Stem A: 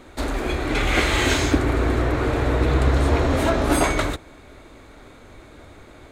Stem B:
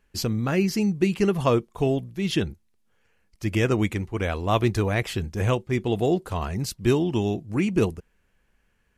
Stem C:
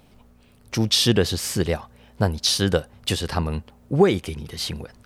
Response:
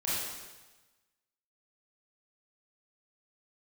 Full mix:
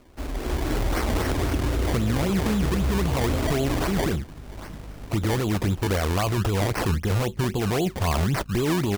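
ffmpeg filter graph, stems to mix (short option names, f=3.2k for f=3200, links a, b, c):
-filter_complex "[0:a]lowshelf=f=230:g=6.5,volume=-11.5dB[a];[1:a]adynamicequalizer=threshold=0.02:dfrequency=370:dqfactor=1:tfrequency=370:tqfactor=1:attack=5:release=100:ratio=0.375:range=2:mode=cutabove:tftype=bell,alimiter=limit=-17dB:level=0:latency=1:release=22,aeval=exprs='val(0)+0.00224*(sin(2*PI*50*n/s)+sin(2*PI*2*50*n/s)/2+sin(2*PI*3*50*n/s)/3+sin(2*PI*4*50*n/s)/4+sin(2*PI*5*50*n/s)/5)':c=same,adelay=1700,volume=2.5dB[b];[2:a]highshelf=f=6.9k:g=10,asplit=2[c][d];[d]afreqshift=-2.2[e];[c][e]amix=inputs=2:normalize=1,volume=-10dB[f];[a][b]amix=inputs=2:normalize=0,dynaudnorm=f=130:g=9:m=11.5dB,alimiter=limit=-11dB:level=0:latency=1:release=14,volume=0dB[g];[f][g]amix=inputs=2:normalize=0,acrusher=samples=23:mix=1:aa=0.000001:lfo=1:lforange=23:lforate=3.8,alimiter=limit=-16.5dB:level=0:latency=1:release=365"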